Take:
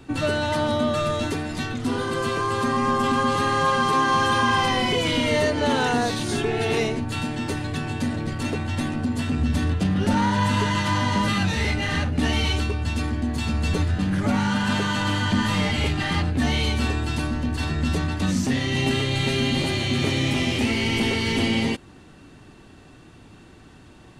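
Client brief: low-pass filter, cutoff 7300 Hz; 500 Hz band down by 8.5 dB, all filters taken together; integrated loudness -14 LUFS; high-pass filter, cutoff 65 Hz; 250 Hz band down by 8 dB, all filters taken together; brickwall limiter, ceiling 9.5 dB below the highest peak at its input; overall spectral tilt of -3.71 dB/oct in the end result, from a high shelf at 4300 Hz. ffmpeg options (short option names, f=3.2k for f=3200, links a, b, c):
-af "highpass=65,lowpass=7.3k,equalizer=f=250:t=o:g=-8,equalizer=f=500:t=o:g=-8.5,highshelf=f=4.3k:g=-7,volume=16.5dB,alimiter=limit=-5.5dB:level=0:latency=1"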